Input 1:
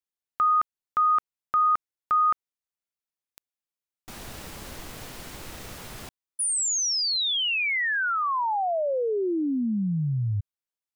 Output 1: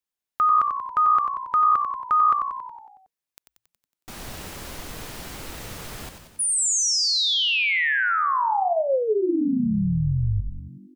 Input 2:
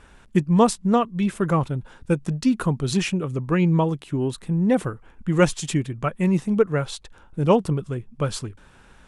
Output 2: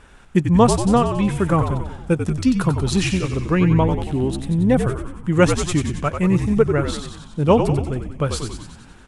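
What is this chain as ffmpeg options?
-filter_complex "[0:a]asplit=9[a][b][c][d][e][f][g][h][i];[b]adelay=92,afreqshift=-60,volume=-7dB[j];[c]adelay=184,afreqshift=-120,volume=-11.4dB[k];[d]adelay=276,afreqshift=-180,volume=-15.9dB[l];[e]adelay=368,afreqshift=-240,volume=-20.3dB[m];[f]adelay=460,afreqshift=-300,volume=-24.7dB[n];[g]adelay=552,afreqshift=-360,volume=-29.2dB[o];[h]adelay=644,afreqshift=-420,volume=-33.6dB[p];[i]adelay=736,afreqshift=-480,volume=-38.1dB[q];[a][j][k][l][m][n][o][p][q]amix=inputs=9:normalize=0,volume=2.5dB"

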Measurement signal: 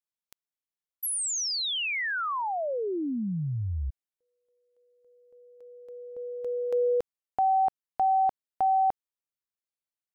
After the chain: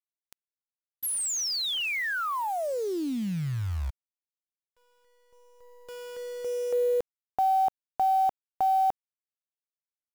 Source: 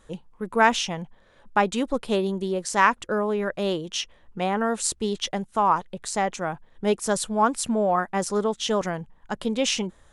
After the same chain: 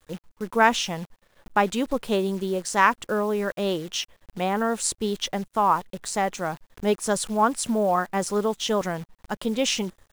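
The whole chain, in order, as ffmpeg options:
-af "acrusher=bits=8:dc=4:mix=0:aa=0.000001"

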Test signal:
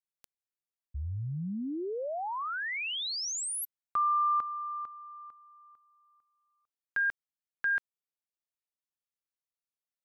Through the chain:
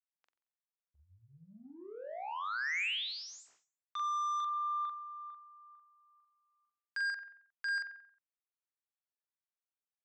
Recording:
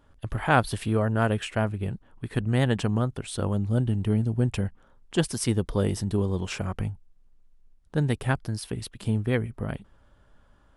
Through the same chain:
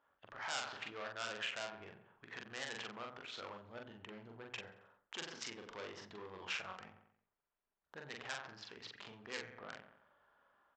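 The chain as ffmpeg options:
-filter_complex "[0:a]dynaudnorm=f=170:g=5:m=4dB,lowshelf=f=450:g=-12,bandreject=f=60:t=h:w=6,bandreject=f=120:t=h:w=6,bandreject=f=180:t=h:w=6,bandreject=f=240:t=h:w=6,bandreject=f=300:t=h:w=6,asplit=2[a][b];[b]aecho=0:1:90|180|270|360:0.168|0.0705|0.0296|0.0124[c];[a][c]amix=inputs=2:normalize=0,adynamicsmooth=sensitivity=2:basefreq=1.3k,lowpass=f=1.7k:p=1,aresample=16000,asoftclip=type=tanh:threshold=-25.5dB,aresample=44100,alimiter=level_in=10.5dB:limit=-24dB:level=0:latency=1:release=111,volume=-10.5dB,aderivative,asplit=2[d][e];[e]adelay=43,volume=-3dB[f];[d][f]amix=inputs=2:normalize=0,volume=14.5dB"

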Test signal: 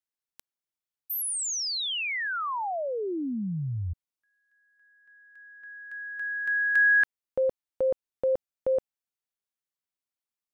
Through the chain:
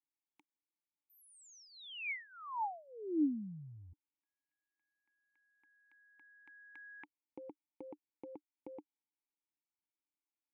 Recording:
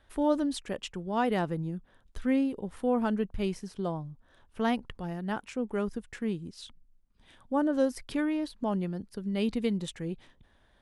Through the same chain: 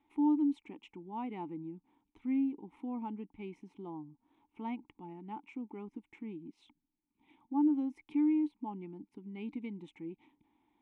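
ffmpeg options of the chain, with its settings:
-filter_complex "[0:a]equalizer=f=4.7k:w=4.3:g=-11,asplit=2[a][b];[b]acompressor=threshold=-41dB:ratio=6:attack=0.35:release=172:detection=peak,volume=2dB[c];[a][c]amix=inputs=2:normalize=0,asplit=3[d][e][f];[d]bandpass=f=300:t=q:w=8,volume=0dB[g];[e]bandpass=f=870:t=q:w=8,volume=-6dB[h];[f]bandpass=f=2.24k:t=q:w=8,volume=-9dB[i];[g][h][i]amix=inputs=3:normalize=0"

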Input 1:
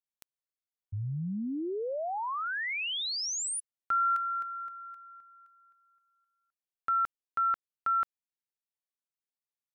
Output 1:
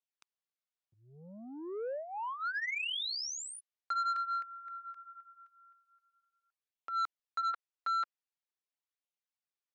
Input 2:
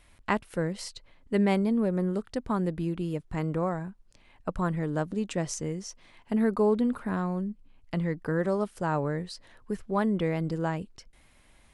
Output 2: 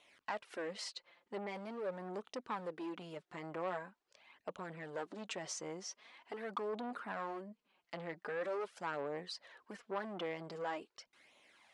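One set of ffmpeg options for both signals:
-af "alimiter=limit=-22dB:level=0:latency=1:release=10,asoftclip=type=hard:threshold=-23.5dB,flanger=delay=0.3:depth=5.5:regen=2:speed=0.44:shape=sinusoidal,asoftclip=type=tanh:threshold=-31dB,highpass=500,lowpass=5.7k,volume=2dB"

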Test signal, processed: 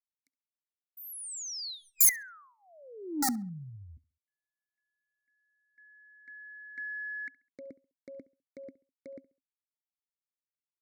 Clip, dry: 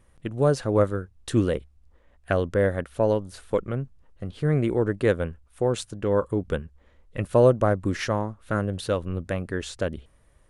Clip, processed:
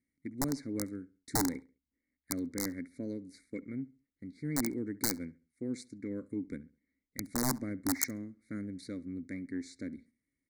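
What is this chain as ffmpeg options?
-filter_complex "[0:a]agate=range=-9dB:threshold=-47dB:ratio=16:detection=peak,asplit=3[a][b][c];[a]bandpass=f=270:t=q:w=8,volume=0dB[d];[b]bandpass=f=2.29k:t=q:w=8,volume=-6dB[e];[c]bandpass=f=3.01k:t=q:w=8,volume=-9dB[f];[d][e][f]amix=inputs=3:normalize=0,equalizer=f=2.2k:t=o:w=0.27:g=12,aeval=exprs='(mod(18.8*val(0)+1,2)-1)/18.8':c=same,bass=f=250:g=5,treble=f=4k:g=13,asoftclip=type=tanh:threshold=-21.5dB,crystalizer=i=0.5:c=0,aeval=exprs='0.168*(cos(1*acos(clip(val(0)/0.168,-1,1)))-cos(1*PI/2))+0.015*(cos(3*acos(clip(val(0)/0.168,-1,1)))-cos(3*PI/2))+0.00376*(cos(6*acos(clip(val(0)/0.168,-1,1)))-cos(6*PI/2))+0.00211*(cos(8*acos(clip(val(0)/0.168,-1,1)))-cos(8*PI/2))':c=same,asuperstop=centerf=2900:order=8:qfactor=1.5,asplit=2[g][h];[h]adelay=68,lowpass=f=3.3k:p=1,volume=-20dB,asplit=2[i][j];[j]adelay=68,lowpass=f=3.3k:p=1,volume=0.33,asplit=2[k][l];[l]adelay=68,lowpass=f=3.3k:p=1,volume=0.33[m];[i][k][m]amix=inputs=3:normalize=0[n];[g][n]amix=inputs=2:normalize=0,volume=2dB"

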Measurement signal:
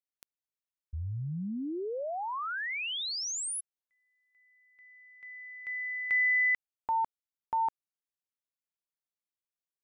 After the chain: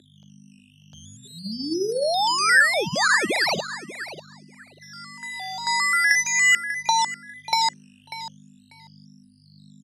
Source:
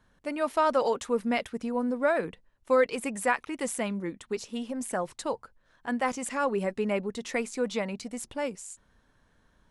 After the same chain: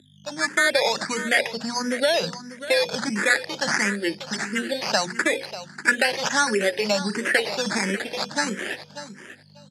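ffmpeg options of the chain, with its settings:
-filter_complex "[0:a]acrossover=split=460|4200[a][b][c];[a]alimiter=level_in=8dB:limit=-24dB:level=0:latency=1,volume=-8dB[d];[d][b][c]amix=inputs=3:normalize=0,agate=range=-18dB:threshold=-57dB:ratio=16:release=224:detection=rms,dynaudnorm=f=230:g=5:m=12dB,bandreject=f=60:t=h:w=6,bandreject=f=120:t=h:w=6,bandreject=f=180:t=h:w=6,bandreject=f=240:t=h:w=6,bandreject=f=300:t=h:w=6,bandreject=f=360:t=h:w=6,bandreject=f=420:t=h:w=6,bandreject=f=480:t=h:w=6,bandreject=f=540:t=h:w=6,acompressor=threshold=-23dB:ratio=6:attack=32:release=43:knee=1:detection=peak,aeval=exprs='val(0)+0.0126*(sin(2*PI*50*n/s)+sin(2*PI*2*50*n/s)/2+sin(2*PI*3*50*n/s)/3+sin(2*PI*4*50*n/s)/4+sin(2*PI*5*50*n/s)/5)':c=same,acrusher=samples=12:mix=1:aa=0.000001:lfo=1:lforange=7.2:lforate=0.41,highpass=f=180:w=0.5412,highpass=f=180:w=1.3066,equalizer=f=260:t=q:w=4:g=-8,equalizer=f=470:t=q:w=4:g=-5,equalizer=f=710:t=q:w=4:g=-4,equalizer=f=1.1k:t=q:w=4:g=-9,equalizer=f=1.7k:t=q:w=4:g=8,equalizer=f=4.8k:t=q:w=4:g=7,lowpass=f=9.6k:w=0.5412,lowpass=f=9.6k:w=1.3066,asplit=2[e][f];[f]aecho=0:1:592|1184:0.211|0.0359[g];[e][g]amix=inputs=2:normalize=0,asplit=2[h][i];[i]afreqshift=1.5[j];[h][j]amix=inputs=2:normalize=1,volume=5dB"

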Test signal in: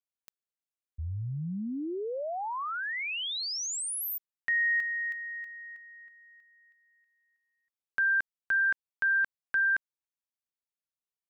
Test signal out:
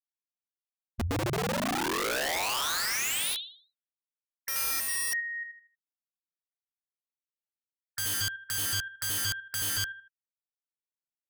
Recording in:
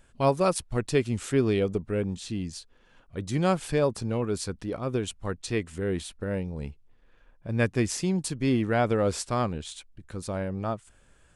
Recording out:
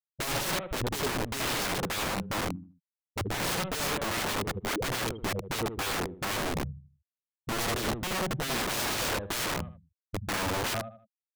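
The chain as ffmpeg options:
-af "afftfilt=real='re*gte(hypot(re,im),0.141)':imag='im*gte(hypot(re,im),0.141)':win_size=1024:overlap=0.75,aresample=8000,asoftclip=type=hard:threshold=-25.5dB,aresample=44100,aecho=1:1:78|156|234|312:0.422|0.139|0.0459|0.0152,aeval=exprs='(mod(42.2*val(0)+1,2)-1)/42.2':c=same,volume=6.5dB"

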